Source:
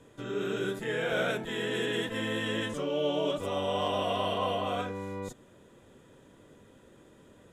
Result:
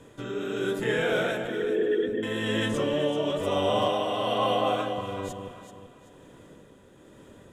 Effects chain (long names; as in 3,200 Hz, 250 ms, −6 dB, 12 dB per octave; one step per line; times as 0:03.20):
0:01.47–0:02.23: spectral envelope exaggerated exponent 3
0:03.69–0:04.98: frequency shifter +20 Hz
amplitude tremolo 1.1 Hz, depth 49%
delay that swaps between a low-pass and a high-pass 192 ms, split 1,000 Hz, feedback 58%, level −5 dB
level +5.5 dB